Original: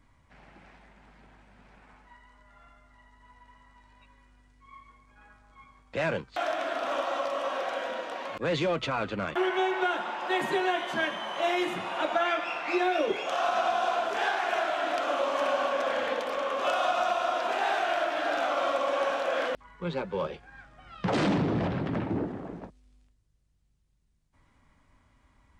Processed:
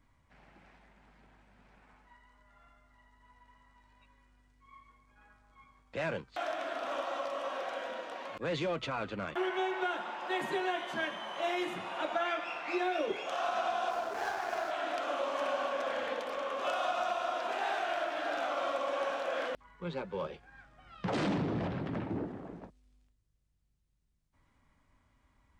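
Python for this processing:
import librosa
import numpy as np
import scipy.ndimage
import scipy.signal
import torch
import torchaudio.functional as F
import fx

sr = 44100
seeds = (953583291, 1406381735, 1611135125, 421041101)

y = fx.median_filter(x, sr, points=15, at=(13.9, 14.71))
y = F.gain(torch.from_numpy(y), -6.0).numpy()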